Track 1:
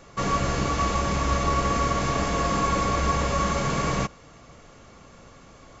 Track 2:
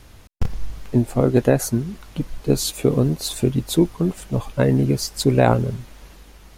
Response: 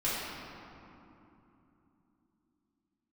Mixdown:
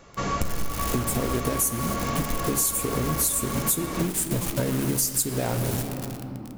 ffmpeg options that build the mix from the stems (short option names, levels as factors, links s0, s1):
-filter_complex "[0:a]volume=0.841[s0];[1:a]acompressor=threshold=0.112:ratio=16,aexciter=amount=6.4:drive=6.3:freq=6200,acrusher=bits=4:mix=0:aa=0.000001,volume=1.26,asplit=2[s1][s2];[s2]volume=0.178[s3];[2:a]atrim=start_sample=2205[s4];[s3][s4]afir=irnorm=-1:irlink=0[s5];[s0][s1][s5]amix=inputs=3:normalize=0,acompressor=threshold=0.0794:ratio=6"